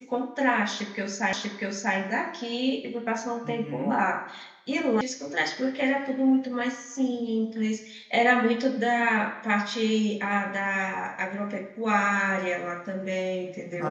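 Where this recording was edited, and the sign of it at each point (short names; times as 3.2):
1.33 repeat of the last 0.64 s
5.01 sound cut off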